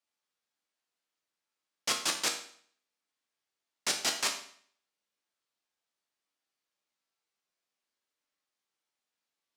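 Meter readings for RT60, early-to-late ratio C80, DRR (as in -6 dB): 0.55 s, 11.5 dB, 2.0 dB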